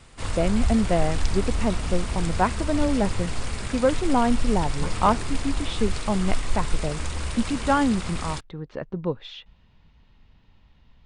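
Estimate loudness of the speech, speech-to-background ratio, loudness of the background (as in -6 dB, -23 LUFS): -26.5 LUFS, 4.5 dB, -31.0 LUFS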